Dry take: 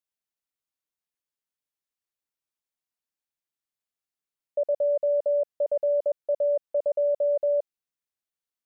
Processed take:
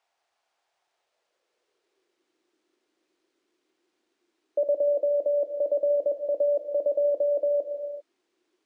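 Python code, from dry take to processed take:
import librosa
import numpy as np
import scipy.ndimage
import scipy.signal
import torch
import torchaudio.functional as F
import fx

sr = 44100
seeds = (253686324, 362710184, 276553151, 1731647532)

y = fx.quant_dither(x, sr, seeds[0], bits=12, dither='triangular')
y = fx.air_absorb(y, sr, metres=58.0)
y = fx.rev_gated(y, sr, seeds[1], gate_ms=420, shape='flat', drr_db=6.5)
y = fx.filter_sweep_highpass(y, sr, from_hz=710.0, to_hz=320.0, start_s=0.86, end_s=2.29, q=3.8)
y = fx.peak_eq(y, sr, hz=350.0, db=10.0, octaves=0.47)
y = np.interp(np.arange(len(y)), np.arange(len(y))[::3], y[::3])
y = F.gain(torch.from_numpy(y), -2.5).numpy()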